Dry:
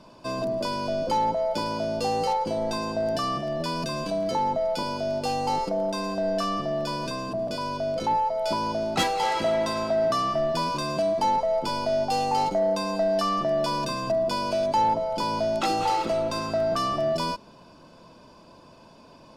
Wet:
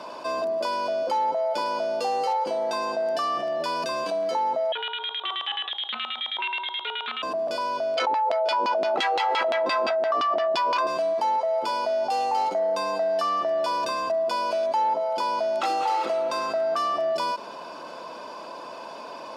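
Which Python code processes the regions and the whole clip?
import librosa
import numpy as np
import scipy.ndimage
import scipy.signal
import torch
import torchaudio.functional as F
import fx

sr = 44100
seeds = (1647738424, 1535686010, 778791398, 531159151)

y = fx.chain(x, sr, fx.freq_invert(carrier_hz=3900),
    fx.filter_lfo_lowpass(shape='square', hz=9.4, low_hz=890.0, high_hz=2000.0, q=2.2),
    fx.doppler_dist(depth_ms=0.12), at=(4.72, 7.23))
y = fx.chain(y, sr, fx.filter_lfo_bandpass(shape='saw_down', hz=5.8, low_hz=250.0, high_hz=3600.0, q=1.4),
    fx.env_flatten(amount_pct=100), at=(7.97, 10.87))
y = scipy.signal.sosfilt(scipy.signal.butter(2, 570.0, 'highpass', fs=sr, output='sos'), y)
y = fx.high_shelf(y, sr, hz=2900.0, db=-9.0)
y = fx.env_flatten(y, sr, amount_pct=50)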